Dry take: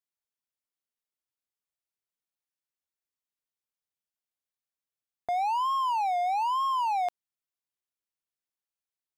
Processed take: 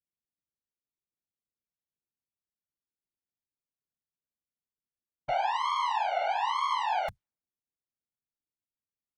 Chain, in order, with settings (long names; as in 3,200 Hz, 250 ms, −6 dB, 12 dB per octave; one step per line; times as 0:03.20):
low-pass that shuts in the quiet parts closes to 300 Hz, open at −27 dBFS
tube saturation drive 35 dB, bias 0.6
random phases in short frames
level +7.5 dB